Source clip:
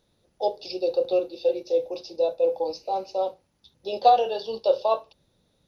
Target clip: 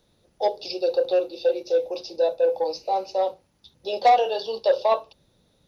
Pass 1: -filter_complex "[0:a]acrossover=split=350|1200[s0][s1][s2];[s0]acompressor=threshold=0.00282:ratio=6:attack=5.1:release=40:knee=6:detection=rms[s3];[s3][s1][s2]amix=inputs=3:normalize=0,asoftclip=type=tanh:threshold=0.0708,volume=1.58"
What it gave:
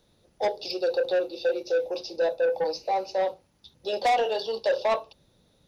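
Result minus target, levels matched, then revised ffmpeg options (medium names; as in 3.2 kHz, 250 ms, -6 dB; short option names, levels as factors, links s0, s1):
saturation: distortion +8 dB
-filter_complex "[0:a]acrossover=split=350|1200[s0][s1][s2];[s0]acompressor=threshold=0.00282:ratio=6:attack=5.1:release=40:knee=6:detection=rms[s3];[s3][s1][s2]amix=inputs=3:normalize=0,asoftclip=type=tanh:threshold=0.2,volume=1.58"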